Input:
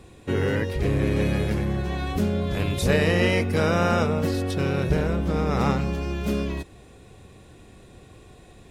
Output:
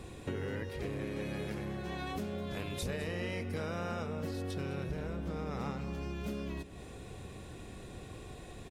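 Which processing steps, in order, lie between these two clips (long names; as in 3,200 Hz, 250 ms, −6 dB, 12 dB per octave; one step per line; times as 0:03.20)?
0:00.69–0:02.83: low-shelf EQ 110 Hz −11.5 dB
downward compressor 5 to 1, threshold −38 dBFS, peak gain reduction 19 dB
single-tap delay 208 ms −15 dB
level +1 dB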